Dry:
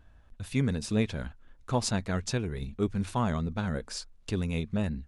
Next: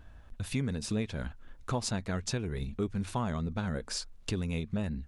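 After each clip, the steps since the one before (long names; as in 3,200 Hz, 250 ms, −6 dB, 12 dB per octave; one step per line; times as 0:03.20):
downward compressor 2.5 to 1, threshold −38 dBFS, peak gain reduction 11.5 dB
level +5 dB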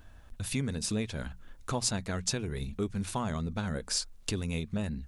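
high-shelf EQ 5,100 Hz +9.5 dB
mains-hum notches 60/120/180 Hz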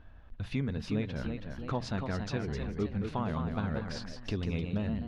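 delay with pitch and tempo change per echo 386 ms, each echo +1 semitone, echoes 3, each echo −6 dB
high-frequency loss of the air 280 metres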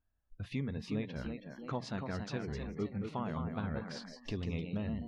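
noise reduction from a noise print of the clip's start 25 dB
level −4 dB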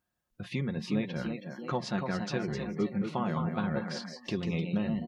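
high-pass filter 130 Hz 12 dB per octave
comb filter 5.6 ms, depth 51%
level +6 dB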